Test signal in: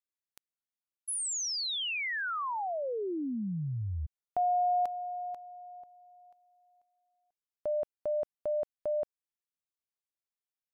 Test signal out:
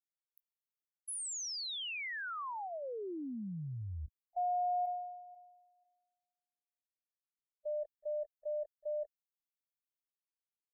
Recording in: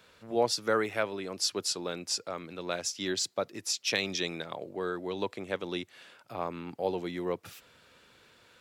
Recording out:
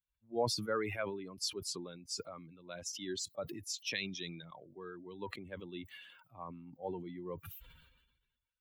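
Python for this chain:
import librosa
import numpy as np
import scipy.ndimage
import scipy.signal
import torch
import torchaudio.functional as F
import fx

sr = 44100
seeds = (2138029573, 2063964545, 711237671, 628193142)

y = fx.bin_expand(x, sr, power=2.0)
y = fx.sustainer(y, sr, db_per_s=47.0)
y = F.gain(torch.from_numpy(y), -5.5).numpy()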